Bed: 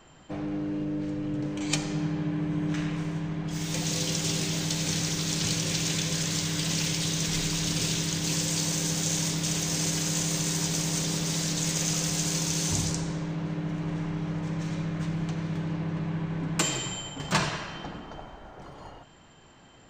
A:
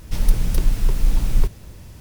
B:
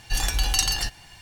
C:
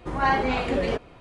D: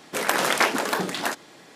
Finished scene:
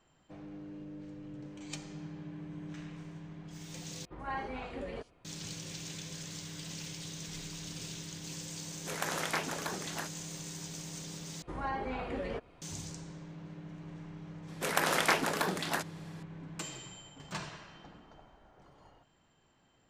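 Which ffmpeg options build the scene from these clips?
-filter_complex "[3:a]asplit=2[a][b];[4:a]asplit=2[c][d];[0:a]volume=-15dB[e];[a]acrossover=split=4500[f][g];[g]adelay=80[h];[f][h]amix=inputs=2:normalize=0[i];[b]acrossover=split=1100|2400[j][k][l];[j]acompressor=threshold=-24dB:ratio=4[m];[k]acompressor=threshold=-35dB:ratio=4[n];[l]acompressor=threshold=-47dB:ratio=4[o];[m][n][o]amix=inputs=3:normalize=0[p];[e]asplit=3[q][r][s];[q]atrim=end=4.054[t];[i]atrim=end=1.2,asetpts=PTS-STARTPTS,volume=-16dB[u];[r]atrim=start=5.246:end=11.424[v];[p]atrim=end=1.2,asetpts=PTS-STARTPTS,volume=-10dB[w];[s]atrim=start=12.616[x];[c]atrim=end=1.75,asetpts=PTS-STARTPTS,volume=-13.5dB,afade=t=in:d=0.004:c=hsin,afade=t=out:st=1.746:d=0.004:c=hsin,adelay=8730[y];[d]atrim=end=1.75,asetpts=PTS-STARTPTS,volume=-7dB,afade=t=in:d=0.004:c=hsin,afade=t=out:st=1.746:d=0.004:c=hsin,adelay=14480[z];[t][u]acrossfade=d=0.004:c1=hsin:c2=hsin[aa];[aa][v]acrossfade=d=0.004:c1=hsin:c2=hsin[ab];[ab][w]acrossfade=d=0.004:c1=hsin:c2=hsin[ac];[ac][x]acrossfade=d=0.004:c1=hsin:c2=hsin[ad];[ad][y][z]amix=inputs=3:normalize=0"

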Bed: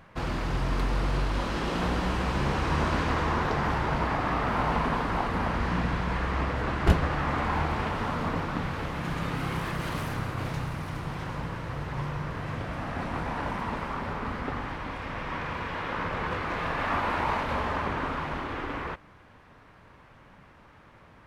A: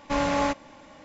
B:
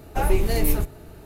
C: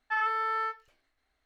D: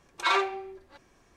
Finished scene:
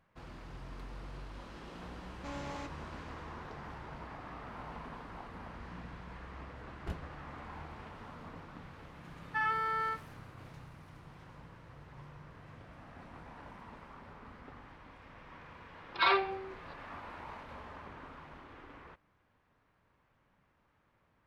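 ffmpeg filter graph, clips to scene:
-filter_complex "[0:a]volume=-19dB[a];[1:a]asoftclip=type=tanh:threshold=-24.5dB[b];[4:a]aresample=11025,aresample=44100[c];[b]atrim=end=1.04,asetpts=PTS-STARTPTS,volume=-14.5dB,afade=t=in:d=0.004:c=hsin,afade=t=out:st=1.036:d=0.004:c=hsin,adelay=2140[d];[3:a]atrim=end=1.45,asetpts=PTS-STARTPTS,volume=-3.5dB,afade=t=in:d=0.004:c=hsin,afade=t=out:st=1.446:d=0.004:c=hsin,adelay=9240[e];[c]atrim=end=1.36,asetpts=PTS-STARTPTS,volume=-2.5dB,afade=t=in:d=0.004:c=hsin,afade=t=out:st=1.356:d=0.004:c=hsin,adelay=15760[f];[a][d][e][f]amix=inputs=4:normalize=0"

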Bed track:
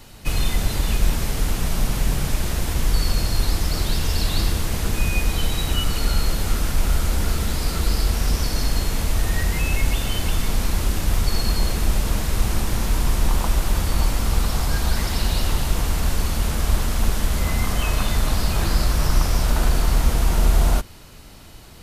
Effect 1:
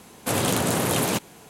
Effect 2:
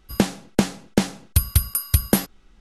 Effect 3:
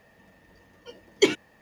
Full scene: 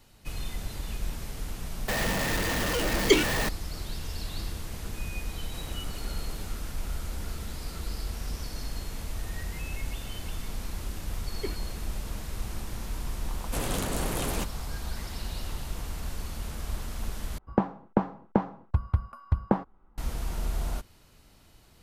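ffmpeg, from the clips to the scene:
-filter_complex "[3:a]asplit=2[a][b];[1:a]asplit=2[c][d];[0:a]volume=-14dB[e];[a]aeval=exprs='val(0)+0.5*0.0944*sgn(val(0))':c=same[f];[c]acompressor=threshold=-30dB:ratio=6:attack=3.2:release=140:knee=1:detection=peak[g];[b]lowpass=2.1k[h];[2:a]lowpass=f=1k:t=q:w=2.8[i];[e]asplit=2[j][k];[j]atrim=end=17.384[l];[i]atrim=end=2.6,asetpts=PTS-STARTPTS,volume=-6.5dB[m];[k]atrim=start=19.976[n];[f]atrim=end=1.61,asetpts=PTS-STARTPTS,volume=-2.5dB,afade=t=in:d=0.004:c=hsin,afade=t=out:st=1.606:d=0.004:c=hsin,adelay=1880[o];[g]atrim=end=1.49,asetpts=PTS-STARTPTS,volume=-15dB,afade=t=in:d=0.004:c=hsin,afade=t=out:st=1.486:d=0.004:c=hsin,adelay=5280[p];[h]atrim=end=1.61,asetpts=PTS-STARTPTS,volume=-15.5dB,afade=t=in:d=0.004:c=hsin,afade=t=out:st=1.606:d=0.004:c=hsin,adelay=10210[q];[d]atrim=end=1.49,asetpts=PTS-STARTPTS,volume=-9dB,afade=t=in:d=0.004:c=hsin,afade=t=out:st=1.486:d=0.004:c=hsin,adelay=13260[r];[l][m]acrossfade=d=0.004:c1=hsin:c2=hsin[s];[s][n]acrossfade=d=0.004:c1=hsin:c2=hsin[t];[t][o][p][q][r]amix=inputs=5:normalize=0"

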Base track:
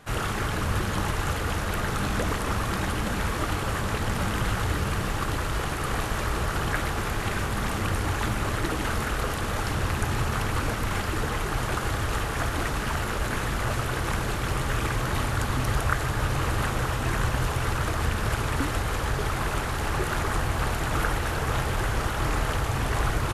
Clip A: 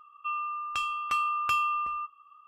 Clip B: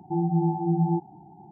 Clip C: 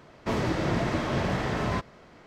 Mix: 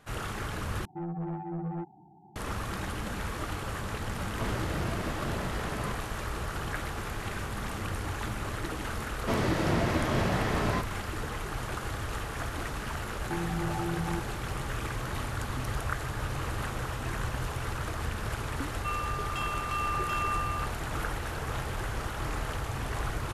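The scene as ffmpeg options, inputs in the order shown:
-filter_complex "[2:a]asplit=2[a][b];[3:a]asplit=2[c][d];[0:a]volume=-7.5dB[e];[a]asoftclip=type=tanh:threshold=-23dB[f];[b]acompressor=threshold=-37dB:ratio=4:attack=17:release=24:knee=1:detection=peak[g];[1:a]alimiter=limit=-23dB:level=0:latency=1:release=71[h];[e]asplit=2[i][j];[i]atrim=end=0.854[k];[f]atrim=end=1.51,asetpts=PTS-STARTPTS,volume=-7.5dB[l];[j]atrim=start=2.356[m];[c]atrim=end=2.26,asetpts=PTS-STARTPTS,volume=-8.5dB,afade=t=in:d=0.004:c=hsin,afade=t=out:st=2.256:d=0.004:c=hsin,adelay=4120[n];[d]atrim=end=2.26,asetpts=PTS-STARTPTS,volume=-1dB,afade=t=in:d=0.004:c=hsin,afade=t=out:st=2.256:d=0.004:c=hsin,adelay=9010[o];[g]atrim=end=1.51,asetpts=PTS-STARTPTS,afade=t=in:d=0.004:c=hsin,afade=t=out:st=1.506:d=0.004:c=hsin,adelay=13200[p];[h]atrim=end=2.47,asetpts=PTS-STARTPTS,volume=-2.5dB,afade=t=in:d=0.004:c=hsin,afade=t=out:st=2.466:d=0.004:c=hsin,adelay=820260S[q];[k][l]acrossfade=d=0.004:c1=hsin:c2=hsin[r];[r][m]acrossfade=d=0.004:c1=hsin:c2=hsin[s];[s][n][o][p][q]amix=inputs=5:normalize=0"

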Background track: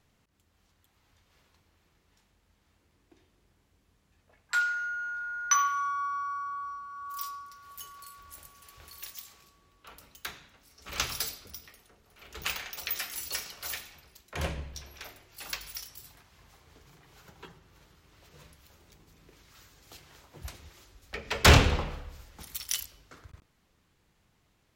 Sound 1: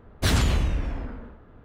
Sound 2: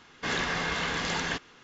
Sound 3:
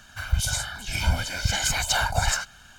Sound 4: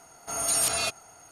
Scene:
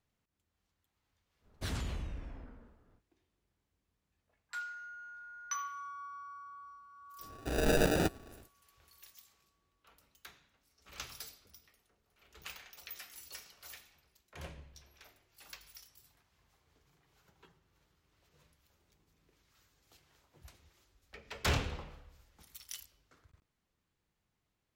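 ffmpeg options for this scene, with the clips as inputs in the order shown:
-filter_complex "[0:a]volume=-14dB[a];[4:a]acrusher=samples=41:mix=1:aa=0.000001[b];[1:a]atrim=end=1.64,asetpts=PTS-STARTPTS,volume=-16.5dB,afade=t=in:d=0.1,afade=t=out:st=1.54:d=0.1,adelay=1390[c];[b]atrim=end=1.31,asetpts=PTS-STARTPTS,volume=-1.5dB,afade=t=in:d=0.1,afade=t=out:st=1.21:d=0.1,adelay=7180[d];[a][c][d]amix=inputs=3:normalize=0"

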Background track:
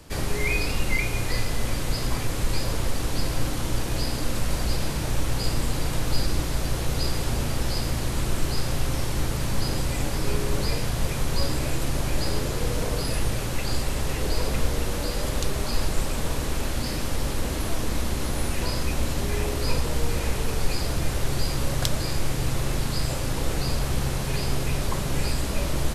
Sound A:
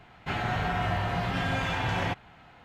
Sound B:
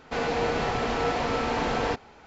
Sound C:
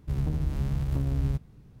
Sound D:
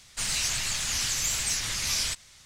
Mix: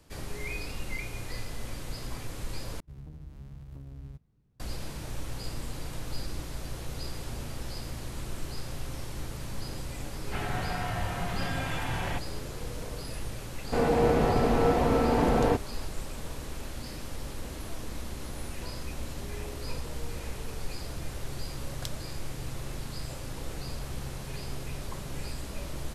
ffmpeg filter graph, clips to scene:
-filter_complex "[0:a]volume=-11.5dB[a];[2:a]tiltshelf=f=970:g=7.5[b];[a]asplit=2[c][d];[c]atrim=end=2.804[e];[3:a]atrim=end=1.8,asetpts=PTS-STARTPTS,volume=-17dB[f];[d]atrim=start=4.596[g];[1:a]atrim=end=2.64,asetpts=PTS-STARTPTS,volume=-5dB,afade=t=in:d=0.004:c=hsin,afade=t=out:st=2.636:d=0.004:c=hsin,adelay=10050[h];[b]atrim=end=2.26,asetpts=PTS-STARTPTS,volume=-1dB,afade=t=in:d=0.004:c=hsin,afade=t=out:st=2.256:d=0.004:c=hsin,adelay=13610[i];[e][f]acrossfade=d=0.004:c1=hsin:c2=hsin[j];[j][g]acrossfade=d=0.004:c1=hsin:c2=hsin[k];[k][h][i]amix=inputs=3:normalize=0"

